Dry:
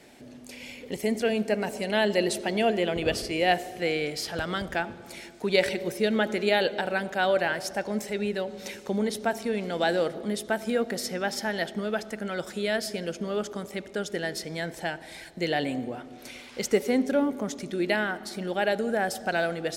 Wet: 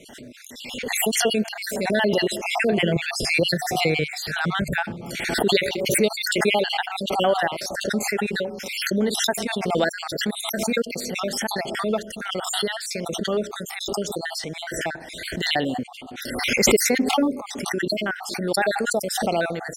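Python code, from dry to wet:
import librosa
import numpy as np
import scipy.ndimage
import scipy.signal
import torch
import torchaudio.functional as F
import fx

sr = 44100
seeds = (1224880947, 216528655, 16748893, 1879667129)

y = fx.spec_dropout(x, sr, seeds[0], share_pct=53)
y = fx.peak_eq(y, sr, hz=150.0, db=11.5, octaves=0.77, at=(2.72, 5.23))
y = fx.pre_swell(y, sr, db_per_s=40.0)
y = y * librosa.db_to_amplitude(5.0)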